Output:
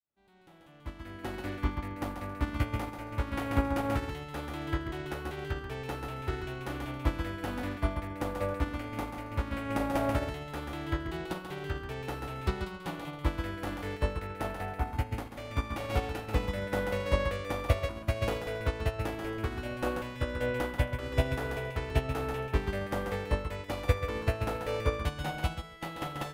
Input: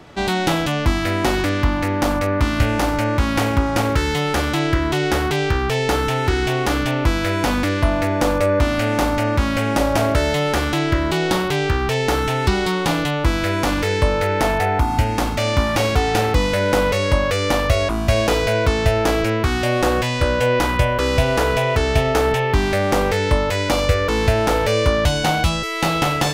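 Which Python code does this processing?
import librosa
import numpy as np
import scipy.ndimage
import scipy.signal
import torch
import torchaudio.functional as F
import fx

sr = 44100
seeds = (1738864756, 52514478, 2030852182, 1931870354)

y = fx.fade_in_head(x, sr, length_s=1.49)
y = fx.peak_eq(y, sr, hz=5800.0, db=-8.0, octaves=1.3)
y = fx.echo_feedback(y, sr, ms=137, feedback_pct=28, wet_db=-3.5)
y = fx.upward_expand(y, sr, threshold_db=-25.0, expansion=2.5)
y = F.gain(torch.from_numpy(y), -8.5).numpy()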